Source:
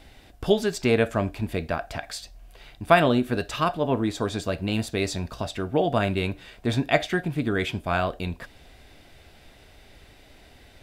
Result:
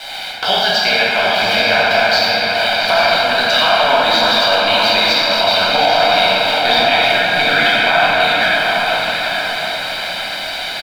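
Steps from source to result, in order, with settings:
high-pass filter 790 Hz 12 dB per octave
high shelf with overshoot 6,000 Hz −12.5 dB, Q 3
comb filter 1.3 ms, depth 81%
downward compressor 5 to 1, threshold −40 dBFS, peak gain reduction 26 dB
dead-zone distortion −59 dBFS
on a send: feedback delay with all-pass diffusion 804 ms, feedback 44%, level −4 dB
on the sum: rectangular room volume 160 cubic metres, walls hard, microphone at 1.1 metres
boost into a limiter +22.5 dB
level −1 dB

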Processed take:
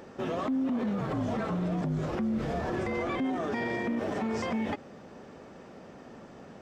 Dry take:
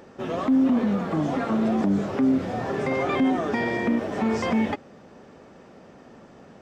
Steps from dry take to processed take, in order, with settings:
brickwall limiter −24 dBFS, peak gain reduction 10.5 dB
0:01.00–0:03.18: frequency shifter −43 Hz

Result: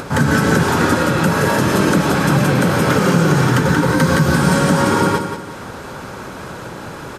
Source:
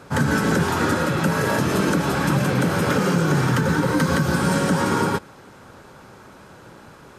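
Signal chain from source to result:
upward compression, threshold −26 dBFS
repeating echo 180 ms, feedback 36%, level −8 dB
level +5 dB

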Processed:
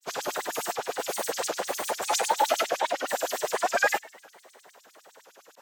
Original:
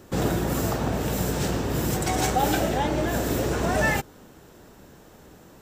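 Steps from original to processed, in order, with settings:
feedback echo with a high-pass in the loop 133 ms, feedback 59%, level −23.5 dB
granular cloud, pitch spread up and down by 3 semitones
auto-filter high-pass sine 9.8 Hz 530–7,200 Hz

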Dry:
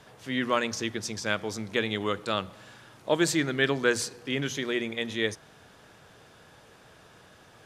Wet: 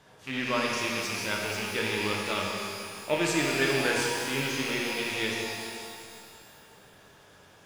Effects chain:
loose part that buzzes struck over −39 dBFS, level −19 dBFS
reverb with rising layers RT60 2.3 s, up +12 semitones, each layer −8 dB, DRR −2 dB
level −5.5 dB

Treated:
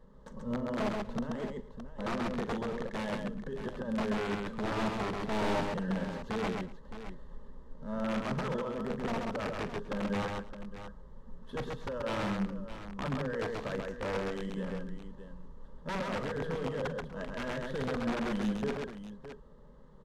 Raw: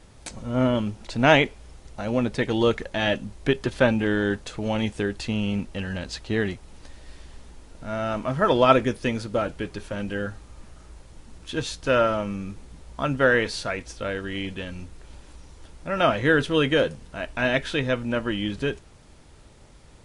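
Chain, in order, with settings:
running median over 9 samples
parametric band 65 Hz −4 dB 1.5 octaves
notch filter 1,400 Hz, Q 5.1
compressor whose output falls as the input rises −26 dBFS, ratio −1
phaser with its sweep stopped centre 480 Hz, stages 8
wrap-around overflow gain 22.5 dB
head-to-tape spacing loss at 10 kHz 21 dB
on a send: multi-tap delay 42/132/243/616 ms −14/−3/−20/−11 dB
on the sum: level −4 dB

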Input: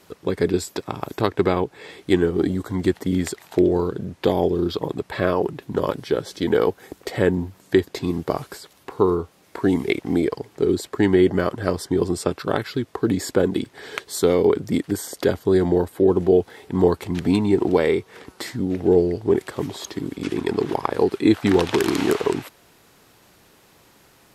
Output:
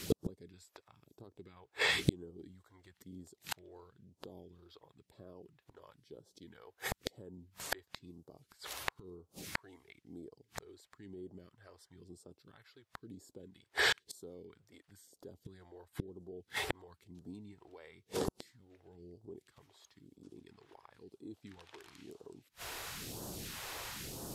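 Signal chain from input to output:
brickwall limiter −10 dBFS, peak gain reduction 8 dB
gate with flip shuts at −27 dBFS, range −40 dB
all-pass phaser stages 2, 1 Hz, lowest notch 180–2,100 Hz
level +11 dB

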